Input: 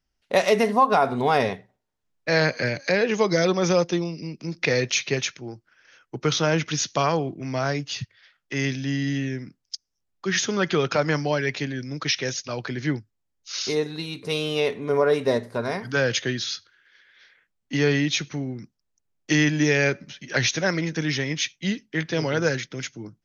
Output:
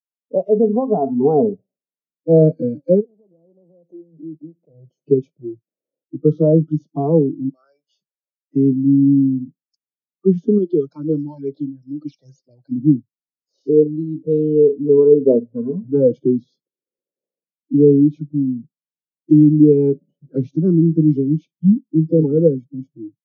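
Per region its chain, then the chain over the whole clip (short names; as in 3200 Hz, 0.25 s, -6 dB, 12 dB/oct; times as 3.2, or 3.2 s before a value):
3–5.04 compressor, threshold -35 dBFS + Doppler distortion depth 0.44 ms
7.49–8.56 HPF 1400 Hz + comb 5.2 ms, depth 39%
10.58–12.72 RIAA curve recording + phaser stages 8, 2.3 Hz, lowest notch 360–2100 Hz
whole clip: spectral noise reduction 29 dB; elliptic band-pass 160–590 Hz, stop band 50 dB; AGC gain up to 15.5 dB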